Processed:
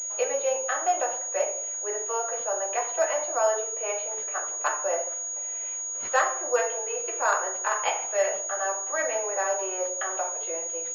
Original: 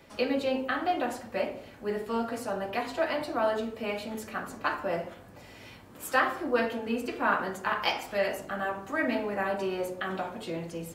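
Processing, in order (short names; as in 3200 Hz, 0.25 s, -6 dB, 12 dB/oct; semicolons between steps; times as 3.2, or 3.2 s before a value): inverse Chebyshev high-pass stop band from 250 Hz, stop band 40 dB; tilt shelf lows +5 dB, about 660 Hz; pulse-width modulation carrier 6700 Hz; gain +4.5 dB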